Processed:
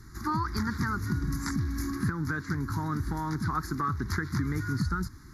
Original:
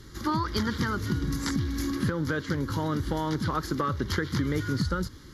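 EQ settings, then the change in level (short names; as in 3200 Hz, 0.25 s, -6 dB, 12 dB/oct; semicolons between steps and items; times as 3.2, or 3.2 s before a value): fixed phaser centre 1300 Hz, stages 4; notch 7900 Hz, Q 16; 0.0 dB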